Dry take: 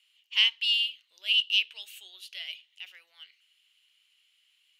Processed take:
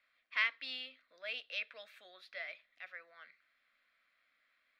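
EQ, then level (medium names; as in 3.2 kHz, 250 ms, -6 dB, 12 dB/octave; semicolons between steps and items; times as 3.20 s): distance through air 370 m; treble shelf 2.2 kHz -9 dB; static phaser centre 590 Hz, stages 8; +15.0 dB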